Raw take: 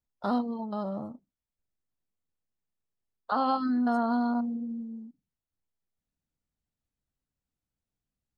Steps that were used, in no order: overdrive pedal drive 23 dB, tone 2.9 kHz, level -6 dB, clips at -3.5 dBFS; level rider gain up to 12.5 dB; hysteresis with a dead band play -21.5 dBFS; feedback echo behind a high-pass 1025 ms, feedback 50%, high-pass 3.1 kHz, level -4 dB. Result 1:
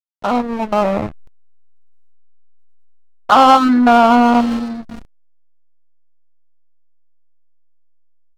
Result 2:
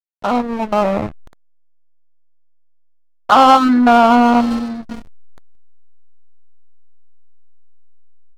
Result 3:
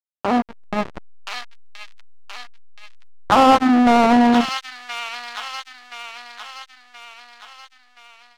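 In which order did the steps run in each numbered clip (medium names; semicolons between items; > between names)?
overdrive pedal > feedback echo behind a high-pass > hysteresis with a dead band > level rider; feedback echo behind a high-pass > overdrive pedal > hysteresis with a dead band > level rider; hysteresis with a dead band > feedback echo behind a high-pass > level rider > overdrive pedal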